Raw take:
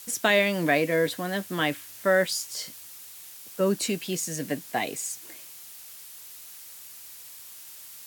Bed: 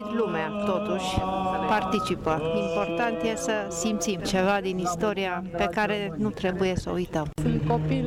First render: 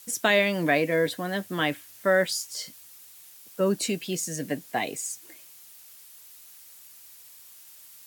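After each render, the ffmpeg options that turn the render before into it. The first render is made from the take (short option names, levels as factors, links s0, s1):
-af "afftdn=nr=6:nf=-45"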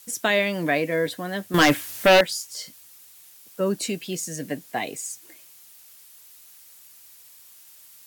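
-filter_complex "[0:a]asettb=1/sr,asplit=3[s0][s1][s2];[s0]atrim=end=1.544[s3];[s1]atrim=start=1.54:end=2.21,asetpts=PTS-STARTPTS,afade=t=in:d=0.004:c=qsin,afade=t=out:st=0.666:d=0.004:c=qsin,aeval=exprs='0.299*sin(PI/2*2.82*val(0)/0.299)':c=same[s4];[s2]atrim=start=2.206[s5];[s3][s4]acrossfade=d=0.004:c1=hsin:c2=qsin[s6];[s6][s5]acrossfade=d=0.004:c1=qsin:c2=hsin"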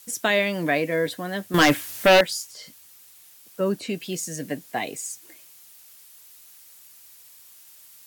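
-filter_complex "[0:a]asettb=1/sr,asplit=3[s0][s1][s2];[s0]atrim=end=2.514[s3];[s1]atrim=start=2.51:end=4,asetpts=PTS-STARTPTS,afade=t=in:d=0.004:c=qsin,afade=t=out:st=1.486:d=0.004:c=qsin,acrossover=split=3700[s4][s5];[s5]acompressor=threshold=0.00631:ratio=4:attack=1:release=60[s6];[s4][s6]amix=inputs=2:normalize=0[s7];[s2]atrim=start=3.996[s8];[s3][s7]acrossfade=d=0.004:c1=hsin:c2=qsin[s9];[s9][s8]acrossfade=d=0.004:c1=qsin:c2=hsin"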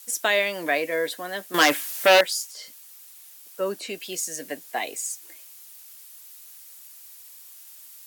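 -af "highpass=420,highshelf=f=5900:g=4"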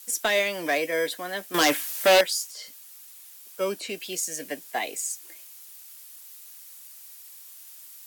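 -filter_complex "[0:a]acrossover=split=510|830|3100[s0][s1][s2][s3];[s0]acrusher=samples=16:mix=1:aa=0.000001[s4];[s2]asoftclip=type=hard:threshold=0.0562[s5];[s4][s1][s5][s3]amix=inputs=4:normalize=0"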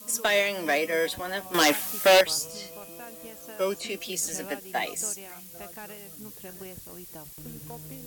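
-filter_complex "[1:a]volume=0.119[s0];[0:a][s0]amix=inputs=2:normalize=0"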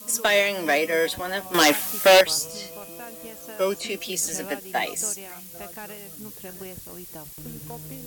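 -af "volume=1.5"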